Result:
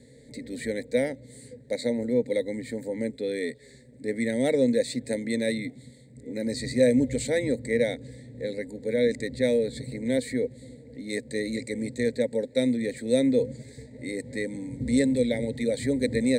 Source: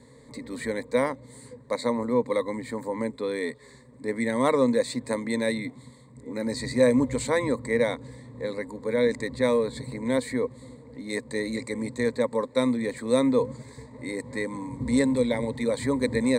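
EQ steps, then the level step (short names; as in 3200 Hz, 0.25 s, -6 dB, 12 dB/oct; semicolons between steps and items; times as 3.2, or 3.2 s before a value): Butterworth band-stop 1100 Hz, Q 0.98; 0.0 dB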